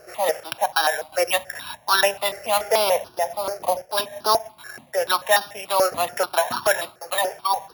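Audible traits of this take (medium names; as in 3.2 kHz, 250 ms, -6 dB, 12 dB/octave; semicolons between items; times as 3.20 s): a buzz of ramps at a fixed pitch in blocks of 8 samples; notches that jump at a steady rate 6.9 Hz 960–2100 Hz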